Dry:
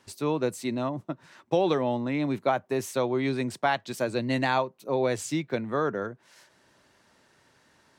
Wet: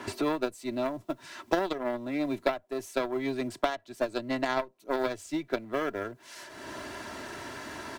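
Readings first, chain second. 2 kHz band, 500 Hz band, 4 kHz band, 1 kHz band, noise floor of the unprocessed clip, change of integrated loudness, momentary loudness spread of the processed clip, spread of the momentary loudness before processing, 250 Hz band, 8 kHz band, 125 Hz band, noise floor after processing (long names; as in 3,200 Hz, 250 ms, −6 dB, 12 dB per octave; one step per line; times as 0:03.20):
−2.5 dB, −3.5 dB, −2.0 dB, −4.0 dB, −64 dBFS, −4.5 dB, 10 LU, 6 LU, −3.5 dB, −5.0 dB, −11.5 dB, −62 dBFS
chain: mu-law and A-law mismatch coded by mu
dynamic equaliser 570 Hz, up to +6 dB, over −38 dBFS, Q 1.9
harmonic generator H 2 −19 dB, 3 −11 dB, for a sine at −8.5 dBFS
comb filter 3 ms, depth 53%
multiband upward and downward compressor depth 100%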